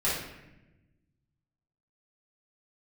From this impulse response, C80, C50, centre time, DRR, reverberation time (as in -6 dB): 5.0 dB, 1.0 dB, 59 ms, -10.0 dB, 1.0 s